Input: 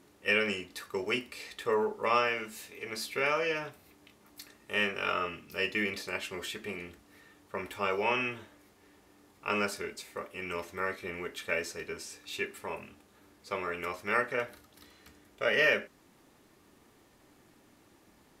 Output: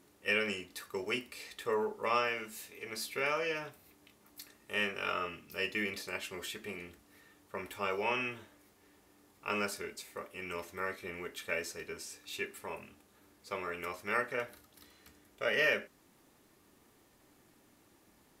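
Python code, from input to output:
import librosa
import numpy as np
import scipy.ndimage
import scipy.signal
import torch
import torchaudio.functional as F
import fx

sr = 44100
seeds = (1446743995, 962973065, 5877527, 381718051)

y = fx.high_shelf(x, sr, hz=8500.0, db=7.0)
y = y * 10.0 ** (-4.0 / 20.0)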